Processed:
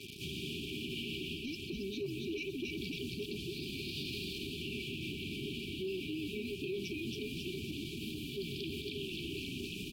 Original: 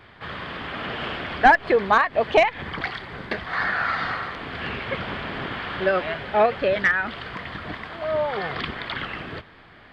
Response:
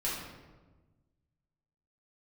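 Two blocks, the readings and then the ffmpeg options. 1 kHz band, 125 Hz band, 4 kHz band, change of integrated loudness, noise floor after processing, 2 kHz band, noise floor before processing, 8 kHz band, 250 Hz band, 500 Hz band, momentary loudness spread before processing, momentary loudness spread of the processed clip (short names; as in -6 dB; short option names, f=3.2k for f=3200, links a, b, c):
under -40 dB, -6.5 dB, -5.5 dB, -16.0 dB, -44 dBFS, -21.0 dB, -49 dBFS, n/a, -5.5 dB, -17.5 dB, 15 LU, 2 LU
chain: -filter_complex "[0:a]lowpass=f=5.7k:t=q:w=4.7,aemphasis=mode=reproduction:type=75fm,asplit=2[a][b];[b]adelay=13,volume=-13dB[c];[a][c]amix=inputs=2:normalize=0,asplit=8[d][e][f][g][h][i][j][k];[e]adelay=275,afreqshift=-70,volume=-3dB[l];[f]adelay=550,afreqshift=-140,volume=-9dB[m];[g]adelay=825,afreqshift=-210,volume=-15dB[n];[h]adelay=1100,afreqshift=-280,volume=-21.1dB[o];[i]adelay=1375,afreqshift=-350,volume=-27.1dB[p];[j]adelay=1650,afreqshift=-420,volume=-33.1dB[q];[k]adelay=1925,afreqshift=-490,volume=-39.1dB[r];[d][l][m][n][o][p][q][r]amix=inputs=8:normalize=0,acrossover=split=890[s][t];[s]acrusher=bits=7:mix=0:aa=0.000001[u];[u][t]amix=inputs=2:normalize=0,afftfilt=real='re*(1-between(b*sr/4096,430,2300))':imag='im*(1-between(b*sr/4096,430,2300))':win_size=4096:overlap=0.75,areverse,acompressor=threshold=-37dB:ratio=6,areverse,alimiter=level_in=13dB:limit=-24dB:level=0:latency=1:release=89,volume=-13dB,highpass=f=150:p=1,volume=7dB" -ar 44100 -c:a libvorbis -b:a 64k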